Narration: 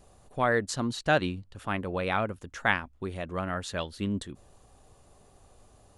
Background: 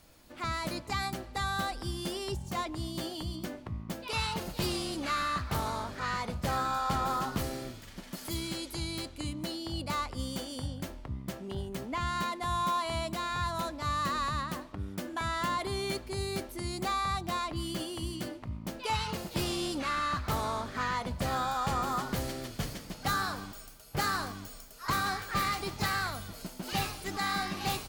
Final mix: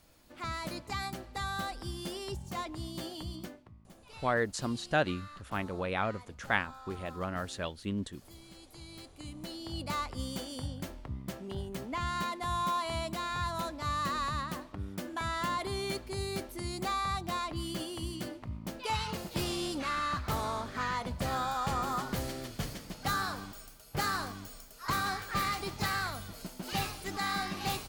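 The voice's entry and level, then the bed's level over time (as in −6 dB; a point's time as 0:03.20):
3.85 s, −4.0 dB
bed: 0:03.41 −3.5 dB
0:03.75 −18 dB
0:08.42 −18 dB
0:09.86 −1.5 dB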